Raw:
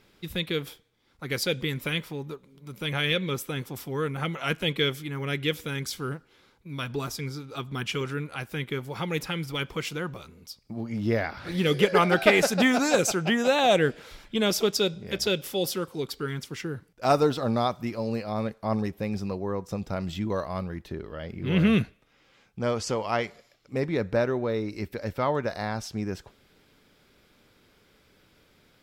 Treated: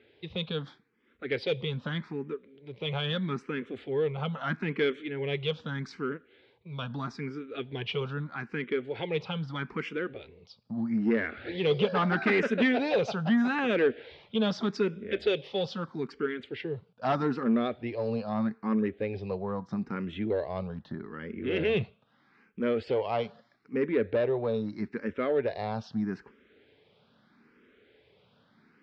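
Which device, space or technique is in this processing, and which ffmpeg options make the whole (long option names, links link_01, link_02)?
barber-pole phaser into a guitar amplifier: -filter_complex "[0:a]asplit=2[link_01][link_02];[link_02]afreqshift=0.79[link_03];[link_01][link_03]amix=inputs=2:normalize=1,asoftclip=type=tanh:threshold=-22dB,highpass=100,equalizer=frequency=230:width_type=q:width=4:gain=6,equalizer=frequency=430:width_type=q:width=4:gain=6,equalizer=frequency=1700:width_type=q:width=4:gain=3,lowpass=frequency=3800:width=0.5412,lowpass=frequency=3800:width=1.3066"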